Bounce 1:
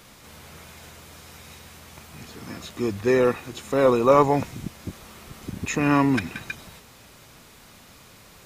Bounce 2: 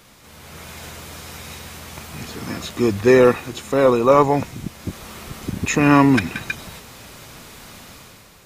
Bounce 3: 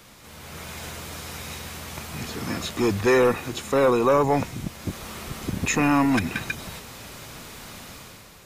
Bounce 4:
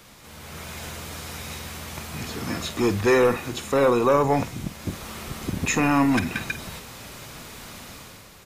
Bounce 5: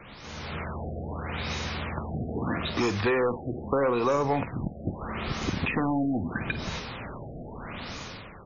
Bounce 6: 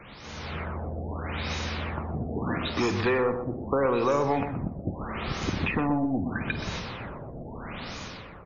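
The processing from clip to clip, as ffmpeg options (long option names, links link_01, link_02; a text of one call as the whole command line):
ffmpeg -i in.wav -af "dynaudnorm=framelen=120:gausssize=9:maxgain=9dB" out.wav
ffmpeg -i in.wav -filter_complex "[0:a]acrossover=split=610|6800[link_01][link_02][link_03];[link_01]asoftclip=type=tanh:threshold=-18.5dB[link_04];[link_02]alimiter=limit=-15dB:level=0:latency=1:release=172[link_05];[link_04][link_05][link_03]amix=inputs=3:normalize=0" out.wav
ffmpeg -i in.wav -filter_complex "[0:a]asplit=2[link_01][link_02];[link_02]adelay=50,volume=-13.5dB[link_03];[link_01][link_03]amix=inputs=2:normalize=0" out.wav
ffmpeg -i in.wav -filter_complex "[0:a]acrossover=split=680|5800[link_01][link_02][link_03];[link_01]acompressor=threshold=-32dB:ratio=4[link_04];[link_02]acompressor=threshold=-34dB:ratio=4[link_05];[link_03]acompressor=threshold=-46dB:ratio=4[link_06];[link_04][link_05][link_06]amix=inputs=3:normalize=0,afftfilt=real='re*lt(b*sr/1024,750*pow(7000/750,0.5+0.5*sin(2*PI*0.78*pts/sr)))':imag='im*lt(b*sr/1024,750*pow(7000/750,0.5+0.5*sin(2*PI*0.78*pts/sr)))':win_size=1024:overlap=0.75,volume=4.5dB" out.wav
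ffmpeg -i in.wav -filter_complex "[0:a]asplit=2[link_01][link_02];[link_02]adelay=124,lowpass=frequency=1200:poles=1,volume=-7.5dB,asplit=2[link_03][link_04];[link_04]adelay=124,lowpass=frequency=1200:poles=1,volume=0.25,asplit=2[link_05][link_06];[link_06]adelay=124,lowpass=frequency=1200:poles=1,volume=0.25[link_07];[link_01][link_03][link_05][link_07]amix=inputs=4:normalize=0" out.wav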